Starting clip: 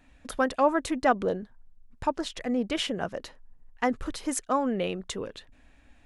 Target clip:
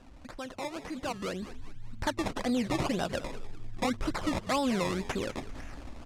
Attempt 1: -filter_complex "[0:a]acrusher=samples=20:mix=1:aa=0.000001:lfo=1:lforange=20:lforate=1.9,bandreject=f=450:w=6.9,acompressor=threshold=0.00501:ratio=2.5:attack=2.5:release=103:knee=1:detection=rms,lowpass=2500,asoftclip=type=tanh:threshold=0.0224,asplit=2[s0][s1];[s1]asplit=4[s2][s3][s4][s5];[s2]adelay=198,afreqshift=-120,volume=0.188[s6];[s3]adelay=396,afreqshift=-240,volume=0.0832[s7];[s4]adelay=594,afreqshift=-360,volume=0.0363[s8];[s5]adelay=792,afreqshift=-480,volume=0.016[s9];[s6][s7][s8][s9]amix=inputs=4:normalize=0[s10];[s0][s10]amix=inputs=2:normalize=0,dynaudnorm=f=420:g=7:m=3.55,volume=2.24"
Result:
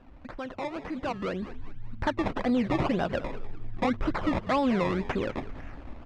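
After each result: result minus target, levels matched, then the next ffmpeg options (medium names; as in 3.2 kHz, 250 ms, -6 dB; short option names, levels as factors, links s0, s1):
8 kHz band -15.5 dB; compression: peak gain reduction -4 dB
-filter_complex "[0:a]acrusher=samples=20:mix=1:aa=0.000001:lfo=1:lforange=20:lforate=1.9,bandreject=f=450:w=6.9,acompressor=threshold=0.00501:ratio=2.5:attack=2.5:release=103:knee=1:detection=rms,lowpass=8100,asoftclip=type=tanh:threshold=0.0224,asplit=2[s0][s1];[s1]asplit=4[s2][s3][s4][s5];[s2]adelay=198,afreqshift=-120,volume=0.188[s6];[s3]adelay=396,afreqshift=-240,volume=0.0832[s7];[s4]adelay=594,afreqshift=-360,volume=0.0363[s8];[s5]adelay=792,afreqshift=-480,volume=0.016[s9];[s6][s7][s8][s9]amix=inputs=4:normalize=0[s10];[s0][s10]amix=inputs=2:normalize=0,dynaudnorm=f=420:g=7:m=3.55,volume=2.24"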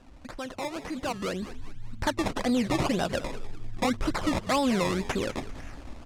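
compression: peak gain reduction -4 dB
-filter_complex "[0:a]acrusher=samples=20:mix=1:aa=0.000001:lfo=1:lforange=20:lforate=1.9,bandreject=f=450:w=6.9,acompressor=threshold=0.00224:ratio=2.5:attack=2.5:release=103:knee=1:detection=rms,lowpass=8100,asoftclip=type=tanh:threshold=0.0224,asplit=2[s0][s1];[s1]asplit=4[s2][s3][s4][s5];[s2]adelay=198,afreqshift=-120,volume=0.188[s6];[s3]adelay=396,afreqshift=-240,volume=0.0832[s7];[s4]adelay=594,afreqshift=-360,volume=0.0363[s8];[s5]adelay=792,afreqshift=-480,volume=0.016[s9];[s6][s7][s8][s9]amix=inputs=4:normalize=0[s10];[s0][s10]amix=inputs=2:normalize=0,dynaudnorm=f=420:g=7:m=3.55,volume=2.24"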